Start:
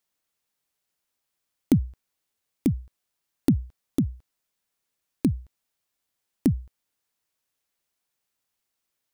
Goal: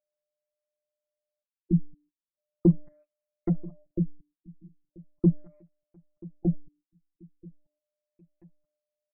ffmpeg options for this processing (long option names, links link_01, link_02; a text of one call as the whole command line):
ffmpeg -i in.wav -filter_complex "[0:a]afftfilt=real='hypot(re,im)*cos(PI*b)':imag='0':win_size=1024:overlap=0.75,bandreject=frequency=296.2:width_type=h:width=4,bandreject=frequency=592.4:width_type=h:width=4,adynamicequalizer=threshold=0.00282:dfrequency=830:dqfactor=1.4:tfrequency=830:tqfactor=1.4:attack=5:release=100:ratio=0.375:range=3.5:mode=boostabove:tftype=bell,asplit=2[link_01][link_02];[link_02]acompressor=threshold=-34dB:ratio=12,volume=2dB[link_03];[link_01][link_03]amix=inputs=2:normalize=0,asoftclip=type=tanh:threshold=-13dB,aphaser=in_gain=1:out_gain=1:delay=1.5:decay=0.55:speed=0.41:type=sinusoidal,aeval=exprs='val(0)+0.00126*sin(2*PI*600*n/s)':channel_layout=same,agate=range=-29dB:threshold=-53dB:ratio=16:detection=peak,asplit=2[link_04][link_05];[link_05]adelay=984,lowpass=frequency=4200:poles=1,volume=-22dB,asplit=2[link_06][link_07];[link_07]adelay=984,lowpass=frequency=4200:poles=1,volume=0.38,asplit=2[link_08][link_09];[link_09]adelay=984,lowpass=frequency=4200:poles=1,volume=0.38[link_10];[link_04][link_06][link_08][link_10]amix=inputs=4:normalize=0,afftfilt=real='re*lt(b*sr/1024,310*pow(2800/310,0.5+0.5*sin(2*PI*0.39*pts/sr)))':imag='im*lt(b*sr/1024,310*pow(2800/310,0.5+0.5*sin(2*PI*0.39*pts/sr)))':win_size=1024:overlap=0.75" out.wav